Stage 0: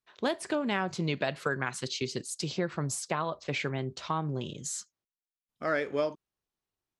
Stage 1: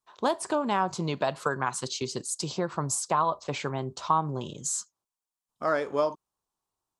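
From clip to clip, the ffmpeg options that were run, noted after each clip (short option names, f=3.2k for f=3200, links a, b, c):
-af "equalizer=f=1k:t=o:w=1:g=12,equalizer=f=2k:t=o:w=1:g=-8,equalizer=f=8k:t=o:w=1:g=7"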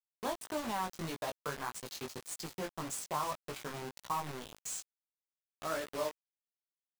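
-af "acrusher=bits=4:mix=0:aa=0.000001,flanger=delay=16.5:depth=4.2:speed=1.7,volume=-8dB"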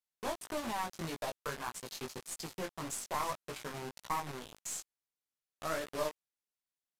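-af "aeval=exprs='(tanh(20*val(0)+0.7)-tanh(0.7))/20':c=same,aresample=32000,aresample=44100,volume=4dB"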